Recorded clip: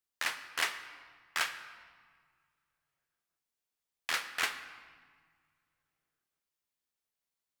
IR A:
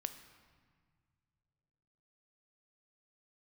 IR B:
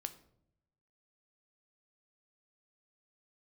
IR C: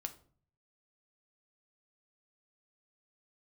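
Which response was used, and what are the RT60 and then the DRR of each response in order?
A; 1.9 s, 0.75 s, 0.50 s; 8.5 dB, 9.0 dB, 6.5 dB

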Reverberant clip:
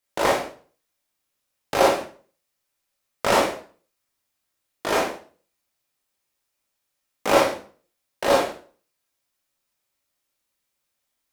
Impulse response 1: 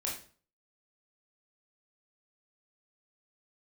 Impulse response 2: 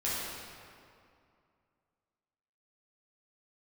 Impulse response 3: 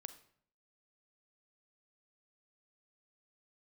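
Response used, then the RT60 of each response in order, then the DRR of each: 1; 0.40 s, 2.4 s, 0.60 s; -3.5 dB, -9.0 dB, 10.5 dB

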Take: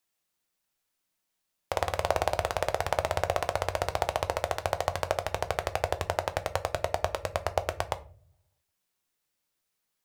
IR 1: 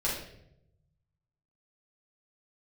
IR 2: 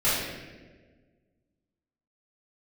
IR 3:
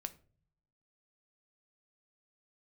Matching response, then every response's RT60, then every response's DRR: 3; 0.75 s, 1.4 s, no single decay rate; -7.5 dB, -11.5 dB, 9.5 dB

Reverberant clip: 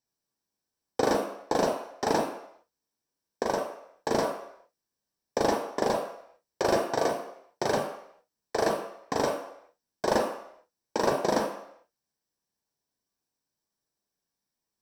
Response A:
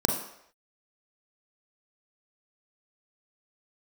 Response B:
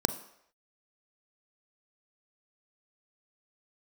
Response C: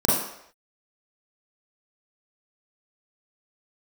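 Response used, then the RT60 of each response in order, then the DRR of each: A; no single decay rate, no single decay rate, no single decay rate; 1.5 dB, 10.5 dB, -7.5 dB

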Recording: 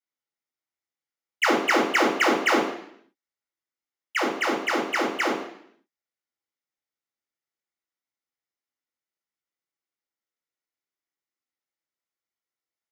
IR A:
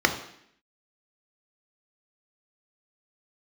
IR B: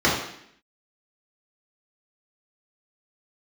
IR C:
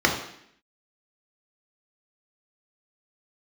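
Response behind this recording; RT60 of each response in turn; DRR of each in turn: C; 0.70 s, 0.70 s, 0.70 s; 5.5 dB, -6.5 dB, 0.5 dB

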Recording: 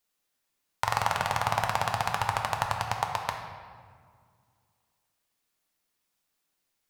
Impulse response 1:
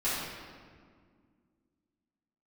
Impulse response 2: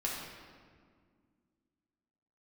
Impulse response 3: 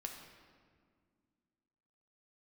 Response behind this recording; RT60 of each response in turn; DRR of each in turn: 3; 1.9 s, 1.9 s, 1.9 s; -13.0 dB, -4.5 dB, 2.0 dB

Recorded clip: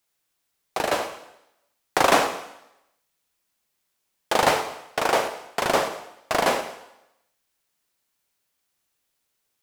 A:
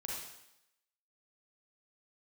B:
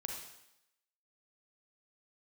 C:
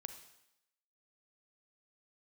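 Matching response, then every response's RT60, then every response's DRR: C; 0.85 s, 0.85 s, 0.85 s; -4.0 dB, 1.0 dB, 8.0 dB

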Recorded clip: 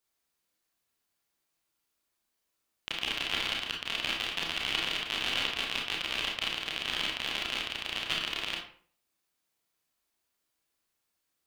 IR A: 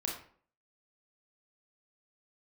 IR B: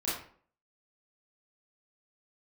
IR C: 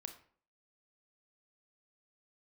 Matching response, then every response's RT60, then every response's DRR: A; 0.50 s, 0.50 s, 0.50 s; -1.0 dB, -9.5 dB, 6.5 dB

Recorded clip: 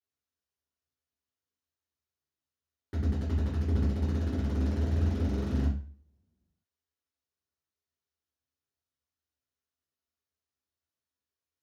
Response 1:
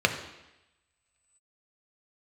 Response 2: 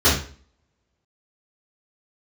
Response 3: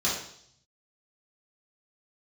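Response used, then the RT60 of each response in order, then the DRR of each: 2; 0.95 s, 0.45 s, 0.65 s; 4.5 dB, -12.0 dB, -7.0 dB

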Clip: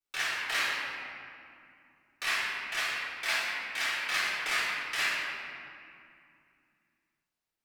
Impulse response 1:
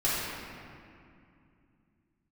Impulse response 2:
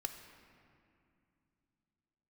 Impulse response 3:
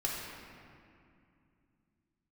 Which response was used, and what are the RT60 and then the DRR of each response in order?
1; 2.5 s, 2.5 s, 2.5 s; -10.0 dB, 6.0 dB, -4.0 dB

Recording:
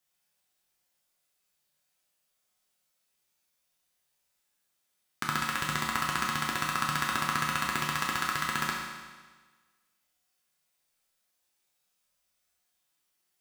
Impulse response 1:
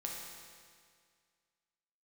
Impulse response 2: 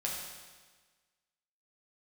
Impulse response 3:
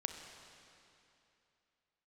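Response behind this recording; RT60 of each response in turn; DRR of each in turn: 2; 2.0 s, 1.4 s, 2.8 s; -2.0 dB, -3.5 dB, 5.0 dB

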